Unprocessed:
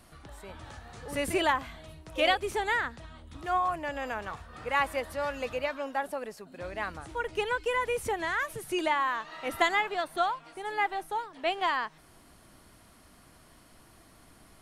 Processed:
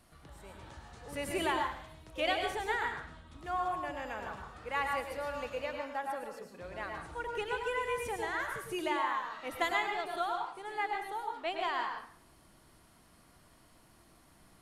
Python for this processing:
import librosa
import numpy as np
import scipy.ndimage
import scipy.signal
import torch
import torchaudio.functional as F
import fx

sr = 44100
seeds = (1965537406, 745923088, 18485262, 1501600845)

y = fx.rev_plate(x, sr, seeds[0], rt60_s=0.54, hf_ratio=0.85, predelay_ms=90, drr_db=2.5)
y = F.gain(torch.from_numpy(y), -7.0).numpy()